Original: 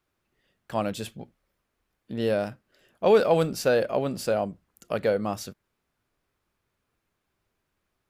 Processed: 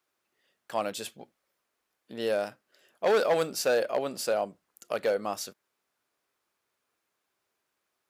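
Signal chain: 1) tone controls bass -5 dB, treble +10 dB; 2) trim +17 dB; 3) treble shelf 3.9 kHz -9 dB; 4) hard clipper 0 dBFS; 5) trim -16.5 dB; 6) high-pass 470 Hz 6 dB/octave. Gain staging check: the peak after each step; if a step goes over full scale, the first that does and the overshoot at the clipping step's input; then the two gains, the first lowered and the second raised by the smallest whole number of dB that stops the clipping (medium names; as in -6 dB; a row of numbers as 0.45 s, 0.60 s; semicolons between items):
-8.0 dBFS, +9.0 dBFS, +8.0 dBFS, 0.0 dBFS, -16.5 dBFS, -13.5 dBFS; step 2, 8.0 dB; step 2 +9 dB, step 5 -8.5 dB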